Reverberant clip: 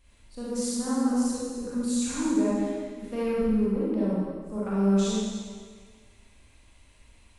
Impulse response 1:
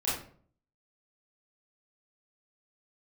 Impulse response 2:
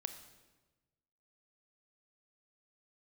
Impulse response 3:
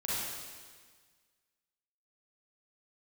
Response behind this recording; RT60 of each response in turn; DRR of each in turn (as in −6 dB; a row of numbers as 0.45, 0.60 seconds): 3; 0.50, 1.2, 1.6 seconds; −9.5, 8.5, −8.5 decibels